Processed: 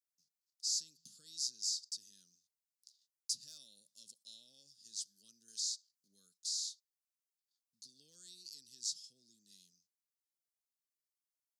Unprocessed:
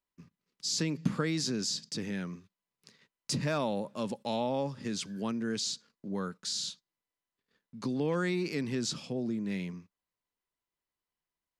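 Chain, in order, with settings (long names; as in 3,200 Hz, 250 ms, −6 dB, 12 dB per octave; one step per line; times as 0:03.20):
inverse Chebyshev high-pass filter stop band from 2,400 Hz, stop band 40 dB
0:05.48–0:06.08: one half of a high-frequency compander encoder only
level −1 dB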